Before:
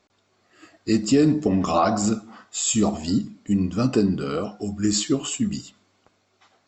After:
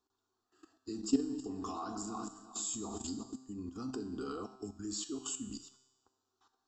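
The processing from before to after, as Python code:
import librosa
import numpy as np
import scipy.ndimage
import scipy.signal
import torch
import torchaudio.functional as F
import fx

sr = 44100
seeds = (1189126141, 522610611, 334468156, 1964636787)

y = fx.reverse_delay_fb(x, sr, ms=182, feedback_pct=67, wet_db=-11.5, at=(1.07, 3.36))
y = fx.level_steps(y, sr, step_db=15)
y = fx.fixed_phaser(y, sr, hz=580.0, stages=6)
y = fx.comb_fb(y, sr, f0_hz=130.0, decay_s=1.1, harmonics='all', damping=0.0, mix_pct=70)
y = y * librosa.db_to_amplitude(2.5)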